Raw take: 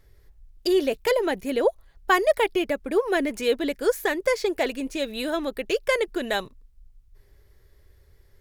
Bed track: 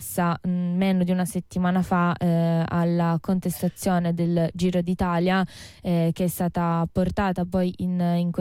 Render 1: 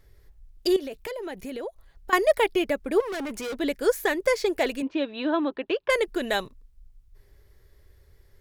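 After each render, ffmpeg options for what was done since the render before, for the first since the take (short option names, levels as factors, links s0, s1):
-filter_complex "[0:a]asettb=1/sr,asplit=3[s0][s1][s2];[s0]atrim=end=0.764[s3];[s1]atrim=start=0.76:end=2.13,asetpts=PTS-STARTPTS,afade=t=in:d=0.004:c=qsin,afade=t=out:st=1.366:d=0.004:c=qsin,acompressor=threshold=0.0224:ratio=4:attack=3.2:release=140:knee=1:detection=peak[s4];[s2]atrim=start=2.126[s5];[s3][s4]acrossfade=d=0.004:c1=hsin:c2=qsin[s6];[s6][s5]acrossfade=d=0.004:c1=qsin:c2=hsin,asettb=1/sr,asplit=3[s7][s8][s9];[s7]atrim=end=3.004[s10];[s8]atrim=start=3:end=3.59,asetpts=PTS-STARTPTS,afade=t=in:d=0.004:c=qsin,afade=t=out:st=0.586:d=0.004:c=qsin,asoftclip=type=hard:threshold=0.0316[s11];[s9]atrim=start=3.586[s12];[s10][s11]acrossfade=d=0.004:c1=hsin:c2=qsin[s13];[s13][s12]acrossfade=d=0.004:c1=qsin:c2=hsin,asettb=1/sr,asplit=3[s14][s15][s16];[s14]atrim=end=4.824[s17];[s15]atrim=start=4.82:end=5.9,asetpts=PTS-STARTPTS,afade=t=in:d=0.004:c=qsin,afade=t=out:st=1.076:d=0.004:c=qsin,highpass=160,equalizer=f=200:t=q:w=4:g=-8,equalizer=f=300:t=q:w=4:g=7,equalizer=f=460:t=q:w=4:g=-5,equalizer=f=990:t=q:w=4:g=7,equalizer=f=2100:t=q:w=4:g=-6,lowpass=f=3400:w=0.5412,lowpass=f=3400:w=1.3066[s18];[s16]atrim=start=5.896[s19];[s17][s18]acrossfade=d=0.004:c1=hsin:c2=qsin[s20];[s20][s19]acrossfade=d=0.004:c1=qsin:c2=hsin"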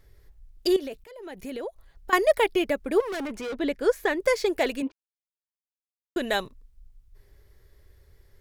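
-filter_complex "[0:a]asettb=1/sr,asplit=3[s0][s1][s2];[s0]atrim=end=3.274[s3];[s1]atrim=start=3.27:end=4.2,asetpts=PTS-STARTPTS,afade=t=in:d=0.004:c=qsin,afade=t=out:st=0.926:d=0.004:c=qsin,lowpass=f=3300:p=1[s4];[s2]atrim=start=4.196[s5];[s3][s4]acrossfade=d=0.004:c1=hsin:c2=qsin[s6];[s6][s5]acrossfade=d=0.004:c1=qsin:c2=hsin,asplit=4[s7][s8][s9][s10];[s7]atrim=end=1.04,asetpts=PTS-STARTPTS,afade=t=out:st=1.036:d=0.004:c=hsin:silence=0.105925[s11];[s8]atrim=start=1.04:end=4.92,asetpts=PTS-STARTPTS,afade=t=in:d=0.46:silence=0.105925,afade=t=out:st=3.876:d=0.004:c=hsin[s12];[s9]atrim=start=4.92:end=6.16,asetpts=PTS-STARTPTS,volume=0[s13];[s10]atrim=start=6.16,asetpts=PTS-STARTPTS,afade=t=in:d=0.004:c=hsin[s14];[s11][s12][s13][s14]concat=n=4:v=0:a=1"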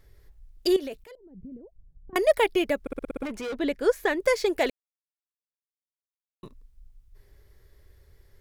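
-filter_complex "[0:a]asettb=1/sr,asplit=3[s0][s1][s2];[s0]atrim=end=1.154[s3];[s1]atrim=start=1.15:end=2.16,asetpts=PTS-STARTPTS,afade=t=in:d=0.004:c=qsin,afade=t=out:st=1.006:d=0.004:c=qsin,lowpass=f=170:t=q:w=1.6[s4];[s2]atrim=start=2.156[s5];[s3][s4]acrossfade=d=0.004:c1=hsin:c2=qsin[s6];[s6][s5]acrossfade=d=0.004:c1=qsin:c2=hsin,asplit=10[s7][s8][s9][s10][s11][s12][s13][s14][s15][s16];[s7]atrim=end=2.872[s17];[s8]atrim=start=2.808:end=2.872[s18];[s9]atrim=start=2.808:end=2.872[s19];[s10]atrim=start=2.808:end=2.872[s20];[s11]atrim=start=2.808:end=2.872[s21];[s12]atrim=start=2.808:end=2.872[s22];[s13]atrim=start=2.808:end=2.872[s23];[s14]atrim=start=3.228:end=4.7,asetpts=PTS-STARTPTS,afade=t=out:st=1.468:d=0.004:c=hsin[s24];[s15]atrim=start=4.7:end=6.43,asetpts=PTS-STARTPTS,volume=0[s25];[s16]atrim=start=6.43,asetpts=PTS-STARTPTS,afade=t=in:d=0.004:c=hsin[s26];[s17][s18]acrossfade=d=0.004:c1=hsin:c2=hsin[s27];[s27][s19]acrossfade=d=0.004:c1=hsin:c2=hsin[s28];[s28][s20]acrossfade=d=0.004:c1=hsin:c2=hsin[s29];[s29][s21]acrossfade=d=0.004:c1=hsin:c2=hsin[s30];[s30][s22]acrossfade=d=0.004:c1=hsin:c2=hsin[s31];[s31][s23]acrossfade=d=0.004:c1=hsin:c2=hsin[s32];[s24][s25][s26]concat=n=3:v=0:a=1[s33];[s32][s33]acrossfade=d=0.004:c1=hsin:c2=hsin"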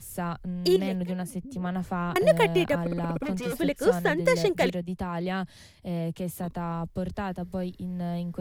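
-filter_complex "[1:a]volume=0.376[s0];[0:a][s0]amix=inputs=2:normalize=0"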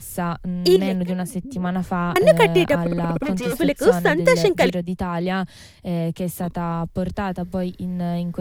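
-af "volume=2.24,alimiter=limit=0.794:level=0:latency=1"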